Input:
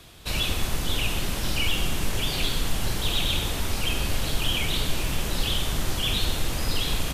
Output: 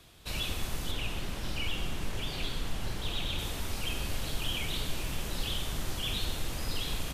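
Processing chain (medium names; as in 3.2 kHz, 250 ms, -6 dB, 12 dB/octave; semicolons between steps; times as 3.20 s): 0.91–3.39 s: treble shelf 5.9 kHz -8 dB; trim -8 dB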